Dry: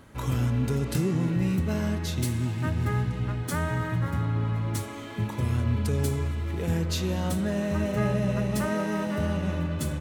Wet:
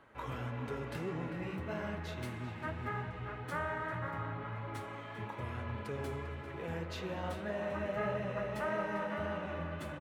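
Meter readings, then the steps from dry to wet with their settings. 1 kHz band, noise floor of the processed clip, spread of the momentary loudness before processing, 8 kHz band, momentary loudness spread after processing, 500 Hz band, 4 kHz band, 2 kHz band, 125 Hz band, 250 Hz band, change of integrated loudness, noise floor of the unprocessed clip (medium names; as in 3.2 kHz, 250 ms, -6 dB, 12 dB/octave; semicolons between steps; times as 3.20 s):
-3.5 dB, -46 dBFS, 4 LU, -20.5 dB, 6 LU, -6.5 dB, -12.0 dB, -4.5 dB, -16.0 dB, -14.5 dB, -11.5 dB, -37 dBFS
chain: three-band isolator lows -13 dB, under 440 Hz, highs -18 dB, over 2.9 kHz; flange 1.7 Hz, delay 5.6 ms, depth 8.7 ms, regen -37%; echo from a far wall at 68 m, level -9 dB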